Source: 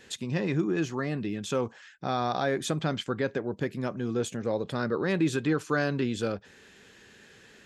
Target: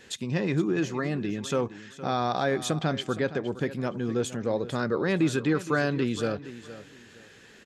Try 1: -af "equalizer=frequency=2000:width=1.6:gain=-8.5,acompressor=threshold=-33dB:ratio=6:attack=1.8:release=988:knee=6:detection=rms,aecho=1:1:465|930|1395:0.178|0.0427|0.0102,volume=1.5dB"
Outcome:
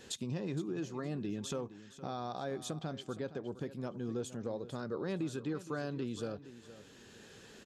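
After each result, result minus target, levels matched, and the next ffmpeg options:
downward compressor: peak gain reduction +13.5 dB; 2,000 Hz band −5.5 dB
-af "equalizer=frequency=2000:width=1.6:gain=-8.5,aecho=1:1:465|930|1395:0.178|0.0427|0.0102,volume=1.5dB"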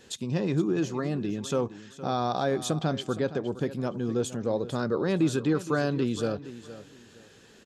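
2,000 Hz band −5.0 dB
-af "aecho=1:1:465|930|1395:0.178|0.0427|0.0102,volume=1.5dB"

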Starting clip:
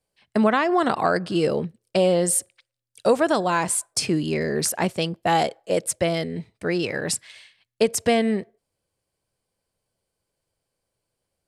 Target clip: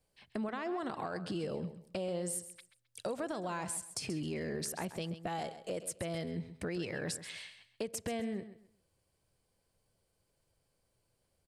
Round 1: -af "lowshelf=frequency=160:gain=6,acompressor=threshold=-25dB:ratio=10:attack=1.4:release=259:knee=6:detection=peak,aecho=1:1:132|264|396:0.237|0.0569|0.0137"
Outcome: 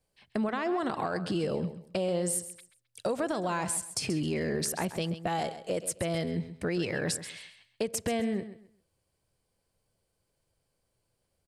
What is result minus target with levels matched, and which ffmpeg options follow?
downward compressor: peak gain reduction −7 dB
-af "lowshelf=frequency=160:gain=6,acompressor=threshold=-33dB:ratio=10:attack=1.4:release=259:knee=6:detection=peak,aecho=1:1:132|264|396:0.237|0.0569|0.0137"

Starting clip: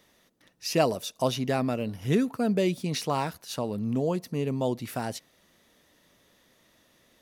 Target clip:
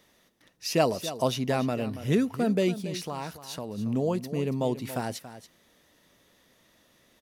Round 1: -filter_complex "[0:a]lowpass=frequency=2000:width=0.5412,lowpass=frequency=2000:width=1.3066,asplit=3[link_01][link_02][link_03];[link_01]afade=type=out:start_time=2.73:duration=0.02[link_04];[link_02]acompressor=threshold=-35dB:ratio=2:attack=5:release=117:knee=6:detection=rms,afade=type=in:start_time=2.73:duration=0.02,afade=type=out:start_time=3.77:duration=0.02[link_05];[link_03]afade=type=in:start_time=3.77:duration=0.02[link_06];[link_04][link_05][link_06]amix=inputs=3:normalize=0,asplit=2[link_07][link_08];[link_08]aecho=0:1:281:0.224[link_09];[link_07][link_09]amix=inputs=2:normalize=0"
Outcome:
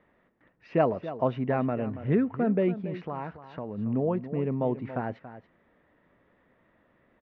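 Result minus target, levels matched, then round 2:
2,000 Hz band −2.5 dB
-filter_complex "[0:a]asplit=3[link_01][link_02][link_03];[link_01]afade=type=out:start_time=2.73:duration=0.02[link_04];[link_02]acompressor=threshold=-35dB:ratio=2:attack=5:release=117:knee=6:detection=rms,afade=type=in:start_time=2.73:duration=0.02,afade=type=out:start_time=3.77:duration=0.02[link_05];[link_03]afade=type=in:start_time=3.77:duration=0.02[link_06];[link_04][link_05][link_06]amix=inputs=3:normalize=0,asplit=2[link_07][link_08];[link_08]aecho=0:1:281:0.224[link_09];[link_07][link_09]amix=inputs=2:normalize=0"

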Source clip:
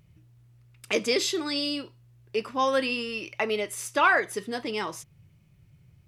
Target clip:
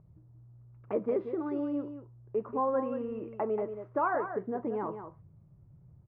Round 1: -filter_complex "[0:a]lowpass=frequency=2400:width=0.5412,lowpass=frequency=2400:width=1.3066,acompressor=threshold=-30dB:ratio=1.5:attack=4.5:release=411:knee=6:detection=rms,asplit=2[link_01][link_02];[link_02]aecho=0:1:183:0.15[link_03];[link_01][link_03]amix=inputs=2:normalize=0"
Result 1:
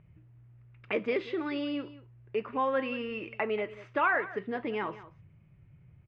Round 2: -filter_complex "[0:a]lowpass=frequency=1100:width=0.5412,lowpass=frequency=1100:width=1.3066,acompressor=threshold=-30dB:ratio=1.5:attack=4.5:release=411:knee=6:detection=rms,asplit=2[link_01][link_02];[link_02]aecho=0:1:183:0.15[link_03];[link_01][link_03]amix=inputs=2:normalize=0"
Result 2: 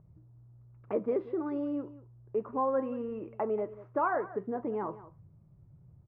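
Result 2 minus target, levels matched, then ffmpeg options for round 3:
echo-to-direct −7.5 dB
-filter_complex "[0:a]lowpass=frequency=1100:width=0.5412,lowpass=frequency=1100:width=1.3066,acompressor=threshold=-30dB:ratio=1.5:attack=4.5:release=411:knee=6:detection=rms,asplit=2[link_01][link_02];[link_02]aecho=0:1:183:0.355[link_03];[link_01][link_03]amix=inputs=2:normalize=0"

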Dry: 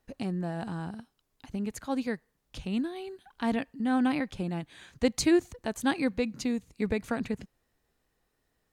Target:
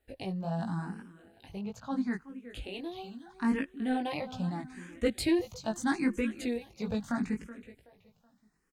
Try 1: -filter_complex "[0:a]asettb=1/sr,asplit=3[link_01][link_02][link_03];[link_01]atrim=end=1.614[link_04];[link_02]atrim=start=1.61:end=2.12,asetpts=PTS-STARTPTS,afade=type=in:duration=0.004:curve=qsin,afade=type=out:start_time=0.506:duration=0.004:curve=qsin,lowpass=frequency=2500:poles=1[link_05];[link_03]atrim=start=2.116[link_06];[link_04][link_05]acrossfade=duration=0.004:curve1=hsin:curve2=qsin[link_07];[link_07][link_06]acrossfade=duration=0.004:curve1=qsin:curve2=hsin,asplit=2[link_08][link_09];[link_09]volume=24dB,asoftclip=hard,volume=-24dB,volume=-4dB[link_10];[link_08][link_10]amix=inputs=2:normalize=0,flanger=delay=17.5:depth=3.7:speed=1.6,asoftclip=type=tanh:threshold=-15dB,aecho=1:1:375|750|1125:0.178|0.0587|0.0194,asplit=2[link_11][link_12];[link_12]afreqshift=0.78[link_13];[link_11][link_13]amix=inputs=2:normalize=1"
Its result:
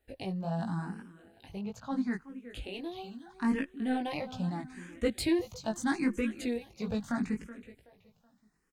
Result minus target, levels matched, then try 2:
gain into a clipping stage and back: distortion +12 dB
-filter_complex "[0:a]asettb=1/sr,asplit=3[link_01][link_02][link_03];[link_01]atrim=end=1.614[link_04];[link_02]atrim=start=1.61:end=2.12,asetpts=PTS-STARTPTS,afade=type=in:duration=0.004:curve=qsin,afade=type=out:start_time=0.506:duration=0.004:curve=qsin,lowpass=frequency=2500:poles=1[link_05];[link_03]atrim=start=2.116[link_06];[link_04][link_05]acrossfade=duration=0.004:curve1=hsin:curve2=qsin[link_07];[link_07][link_06]acrossfade=duration=0.004:curve1=qsin:curve2=hsin,asplit=2[link_08][link_09];[link_09]volume=17.5dB,asoftclip=hard,volume=-17.5dB,volume=-4dB[link_10];[link_08][link_10]amix=inputs=2:normalize=0,flanger=delay=17.5:depth=3.7:speed=1.6,asoftclip=type=tanh:threshold=-15dB,aecho=1:1:375|750|1125:0.178|0.0587|0.0194,asplit=2[link_11][link_12];[link_12]afreqshift=0.78[link_13];[link_11][link_13]amix=inputs=2:normalize=1"

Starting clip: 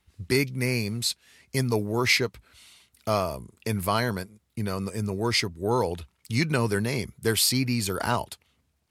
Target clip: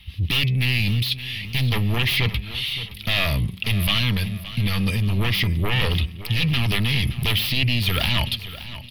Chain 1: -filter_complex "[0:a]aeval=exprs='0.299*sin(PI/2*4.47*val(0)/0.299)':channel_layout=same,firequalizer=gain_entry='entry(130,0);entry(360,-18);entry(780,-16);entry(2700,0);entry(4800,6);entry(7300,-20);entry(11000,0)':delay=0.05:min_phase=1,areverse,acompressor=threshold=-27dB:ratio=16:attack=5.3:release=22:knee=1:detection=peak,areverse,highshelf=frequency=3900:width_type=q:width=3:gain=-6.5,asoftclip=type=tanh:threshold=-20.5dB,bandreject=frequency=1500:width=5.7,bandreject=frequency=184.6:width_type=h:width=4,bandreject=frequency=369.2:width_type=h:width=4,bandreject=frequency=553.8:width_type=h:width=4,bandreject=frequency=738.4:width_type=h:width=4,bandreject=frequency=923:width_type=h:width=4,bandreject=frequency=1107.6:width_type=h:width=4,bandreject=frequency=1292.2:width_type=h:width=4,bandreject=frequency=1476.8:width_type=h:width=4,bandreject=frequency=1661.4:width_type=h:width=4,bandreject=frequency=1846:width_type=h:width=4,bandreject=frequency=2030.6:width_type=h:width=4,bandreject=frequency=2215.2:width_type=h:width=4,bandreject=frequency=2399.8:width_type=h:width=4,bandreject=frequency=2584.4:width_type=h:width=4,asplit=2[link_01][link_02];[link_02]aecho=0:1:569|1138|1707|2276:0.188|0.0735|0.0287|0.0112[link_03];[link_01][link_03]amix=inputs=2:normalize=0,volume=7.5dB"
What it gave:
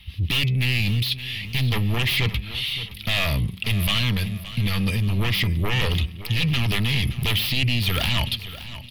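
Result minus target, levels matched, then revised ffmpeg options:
soft clipping: distortion +14 dB
-filter_complex "[0:a]aeval=exprs='0.299*sin(PI/2*4.47*val(0)/0.299)':channel_layout=same,firequalizer=gain_entry='entry(130,0);entry(360,-18);entry(780,-16);entry(2700,0);entry(4800,6);entry(7300,-20);entry(11000,0)':delay=0.05:min_phase=1,areverse,acompressor=threshold=-27dB:ratio=16:attack=5.3:release=22:knee=1:detection=peak,areverse,highshelf=frequency=3900:width_type=q:width=3:gain=-6.5,asoftclip=type=tanh:threshold=-12dB,bandreject=frequency=1500:width=5.7,bandreject=frequency=184.6:width_type=h:width=4,bandreject=frequency=369.2:width_type=h:width=4,bandreject=frequency=553.8:width_type=h:width=4,bandreject=frequency=738.4:width_type=h:width=4,bandreject=frequency=923:width_type=h:width=4,bandreject=frequency=1107.6:width_type=h:width=4,bandreject=frequency=1292.2:width_type=h:width=4,bandreject=frequency=1476.8:width_type=h:width=4,bandreject=frequency=1661.4:width_type=h:width=4,bandreject=frequency=1846:width_type=h:width=4,bandreject=frequency=2030.6:width_type=h:width=4,bandreject=frequency=2215.2:width_type=h:width=4,bandreject=frequency=2399.8:width_type=h:width=4,bandreject=frequency=2584.4:width_type=h:width=4,asplit=2[link_01][link_02];[link_02]aecho=0:1:569|1138|1707|2276:0.188|0.0735|0.0287|0.0112[link_03];[link_01][link_03]amix=inputs=2:normalize=0,volume=7.5dB"

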